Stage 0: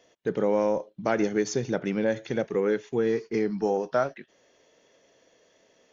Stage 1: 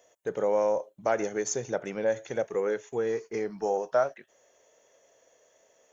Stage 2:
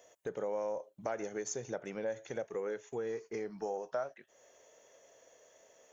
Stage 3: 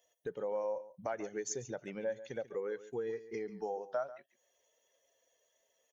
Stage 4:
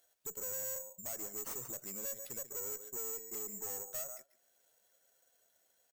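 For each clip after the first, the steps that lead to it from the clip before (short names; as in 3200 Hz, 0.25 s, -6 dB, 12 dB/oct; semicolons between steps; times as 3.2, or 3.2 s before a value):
EQ curve 110 Hz 0 dB, 160 Hz -5 dB, 290 Hz -4 dB, 580 Hz +8 dB, 4800 Hz -1 dB, 7100 Hz +15 dB; gain -6.5 dB
compressor 2:1, threshold -44 dBFS, peak gain reduction 13.5 dB; gain +1 dB
per-bin expansion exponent 1.5; echo 0.141 s -15.5 dB; gain +1.5 dB
careless resampling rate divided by 6×, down none, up zero stuff; speakerphone echo 0.2 s, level -27 dB; tube stage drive 29 dB, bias 0.35; gain -3.5 dB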